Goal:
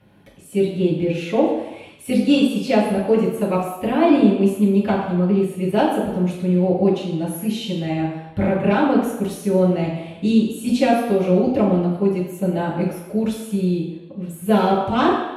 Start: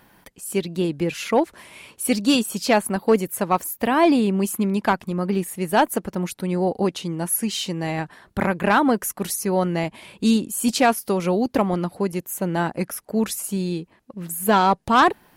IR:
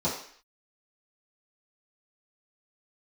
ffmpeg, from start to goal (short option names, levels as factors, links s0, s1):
-filter_complex "[0:a]highshelf=f=8300:g=-4[s0];[1:a]atrim=start_sample=2205,afade=t=out:st=0.36:d=0.01,atrim=end_sample=16317,asetrate=26460,aresample=44100[s1];[s0][s1]afir=irnorm=-1:irlink=0,volume=0.2"